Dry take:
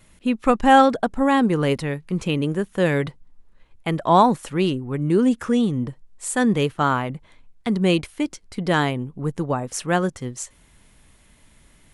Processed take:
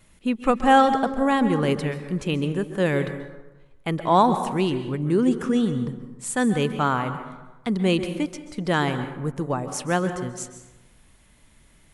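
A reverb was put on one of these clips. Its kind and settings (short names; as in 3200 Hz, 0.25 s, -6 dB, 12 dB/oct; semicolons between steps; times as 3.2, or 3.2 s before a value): plate-style reverb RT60 1.1 s, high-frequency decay 0.5×, pre-delay 0.12 s, DRR 9.5 dB; gain -2.5 dB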